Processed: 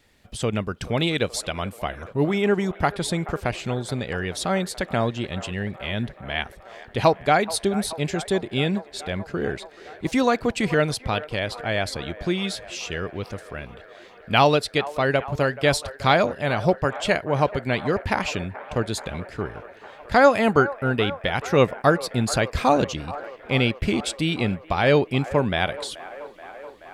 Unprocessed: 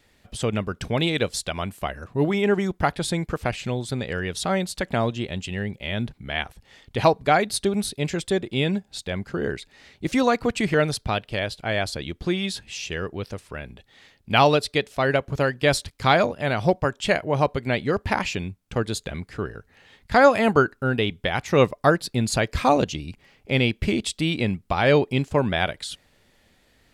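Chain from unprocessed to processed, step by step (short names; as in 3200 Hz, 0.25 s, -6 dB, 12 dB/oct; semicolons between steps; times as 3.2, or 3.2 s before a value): band-limited delay 0.429 s, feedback 77%, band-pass 940 Hz, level -15 dB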